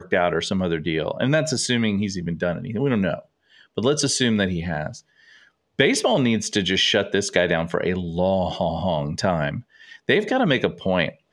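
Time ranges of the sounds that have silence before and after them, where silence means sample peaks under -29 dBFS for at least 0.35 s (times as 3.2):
3.77–4.96
5.79–9.6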